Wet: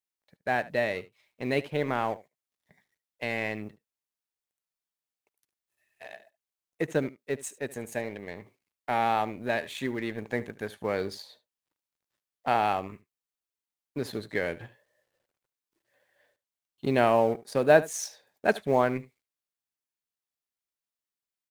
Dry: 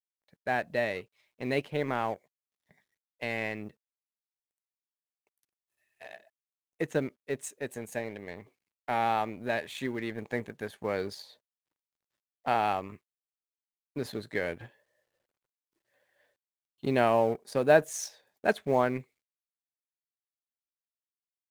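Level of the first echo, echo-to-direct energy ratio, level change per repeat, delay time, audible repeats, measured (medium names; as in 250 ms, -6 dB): -18.5 dB, -18.5 dB, no regular repeats, 74 ms, 1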